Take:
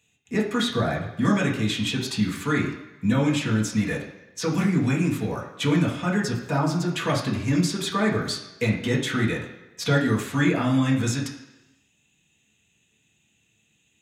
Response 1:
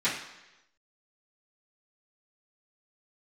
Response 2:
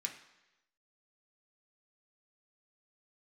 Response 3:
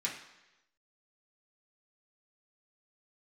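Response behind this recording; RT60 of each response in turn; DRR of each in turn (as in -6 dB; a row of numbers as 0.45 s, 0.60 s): 3; 1.0 s, 1.0 s, 1.0 s; -13.5 dB, 1.0 dB, -5.0 dB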